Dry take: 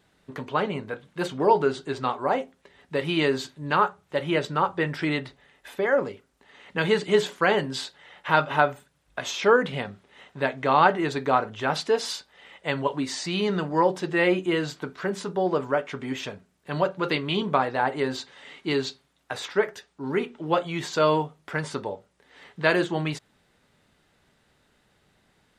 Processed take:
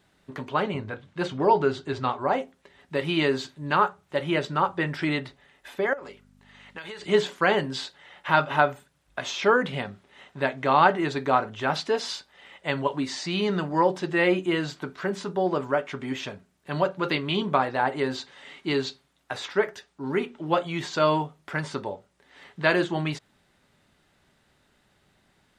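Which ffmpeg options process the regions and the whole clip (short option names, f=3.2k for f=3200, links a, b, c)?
-filter_complex "[0:a]asettb=1/sr,asplit=3[a][b][c];[a]atrim=end=0.744[d];[b]atrim=start=0.74:end=2.34,asetpts=PTS-STARTPTS,afade=t=in:d=0.004:c=qsin,afade=t=out:st=1.596:d=0.004:c=qsin,lowpass=6.9k,equalizer=f=95:t=o:w=0.45:g=13.5[e];[c]atrim=start=2.336[f];[d][e]acrossfade=d=0.004:c1=hsin:c2=qsin[g];[g][f]acrossfade=d=0.004:c1=qsin:c2=hsin,asettb=1/sr,asplit=3[h][i][j];[h]atrim=end=5.934[k];[i]atrim=start=5.93:end=7.06,asetpts=PTS-STARTPTS,afade=t=in:d=0.004:c=qsin,afade=t=out:st=1.126:d=0.004:c=qsin,aeval=exprs='val(0)+0.0126*(sin(2*PI*50*n/s)+sin(2*PI*2*50*n/s)/2+sin(2*PI*3*50*n/s)/3+sin(2*PI*4*50*n/s)/4+sin(2*PI*5*50*n/s)/5)':c=same,highpass=f=800:p=1,acompressor=threshold=-33dB:ratio=12:attack=3.2:release=140:knee=1:detection=peak[l];[j]atrim=start=7.056[m];[k][l]acrossfade=d=0.004:c1=hsin:c2=qsin[n];[n][m]acrossfade=d=0.004:c1=qsin:c2=hsin,acrossover=split=7200[o][p];[p]acompressor=threshold=-56dB:ratio=4:attack=1:release=60[q];[o][q]amix=inputs=2:normalize=0,bandreject=f=470:w=12"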